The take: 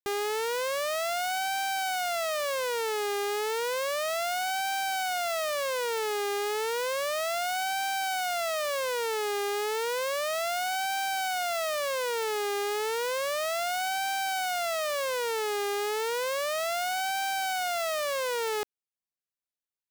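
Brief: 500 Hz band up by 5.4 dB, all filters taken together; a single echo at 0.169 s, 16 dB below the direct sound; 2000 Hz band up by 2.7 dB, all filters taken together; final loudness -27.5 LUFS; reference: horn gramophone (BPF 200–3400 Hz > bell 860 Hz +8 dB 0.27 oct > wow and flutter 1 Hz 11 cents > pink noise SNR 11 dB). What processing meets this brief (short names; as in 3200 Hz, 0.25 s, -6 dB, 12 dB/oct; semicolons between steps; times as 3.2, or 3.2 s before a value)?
BPF 200–3400 Hz; bell 500 Hz +6 dB; bell 860 Hz +8 dB 0.27 oct; bell 2000 Hz +3.5 dB; echo 0.169 s -16 dB; wow and flutter 1 Hz 11 cents; pink noise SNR 11 dB; gain -2.5 dB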